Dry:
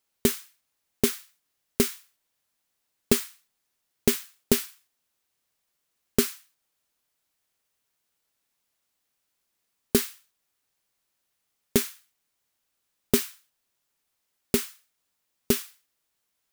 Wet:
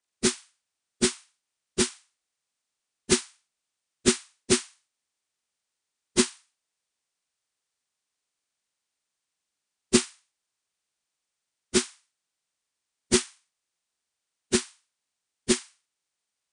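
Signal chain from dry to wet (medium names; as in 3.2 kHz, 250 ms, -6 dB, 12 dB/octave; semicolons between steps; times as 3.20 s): frequency axis rescaled in octaves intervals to 82%; upward expansion 1.5:1, over -38 dBFS; trim +4 dB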